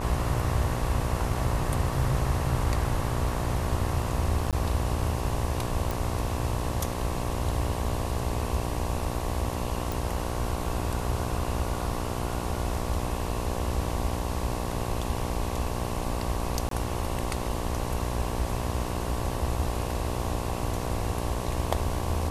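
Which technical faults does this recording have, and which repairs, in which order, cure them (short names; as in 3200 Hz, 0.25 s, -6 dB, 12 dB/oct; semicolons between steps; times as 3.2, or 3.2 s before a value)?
buzz 60 Hz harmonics 19 -33 dBFS
4.51–4.53 gap 17 ms
5.91 pop
9.92 pop
16.69–16.71 gap 23 ms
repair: de-click; de-hum 60 Hz, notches 19; interpolate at 4.51, 17 ms; interpolate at 16.69, 23 ms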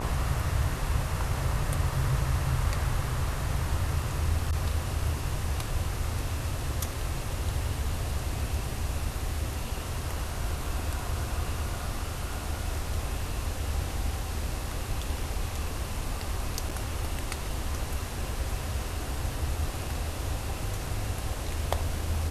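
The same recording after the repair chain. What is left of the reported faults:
none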